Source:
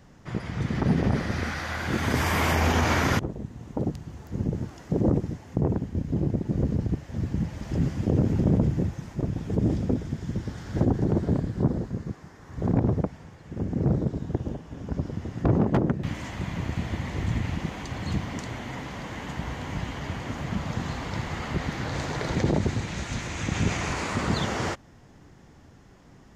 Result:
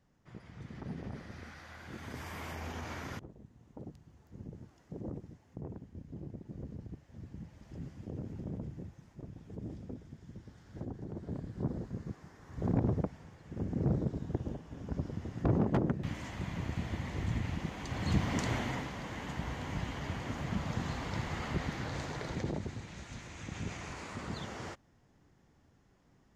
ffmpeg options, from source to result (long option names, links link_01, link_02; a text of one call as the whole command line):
ffmpeg -i in.wav -af "volume=2dB,afade=type=in:start_time=11.14:duration=1.1:silence=0.251189,afade=type=in:start_time=17.77:duration=0.76:silence=0.354813,afade=type=out:start_time=18.53:duration=0.39:silence=0.421697,afade=type=out:start_time=21.46:duration=1.2:silence=0.354813" out.wav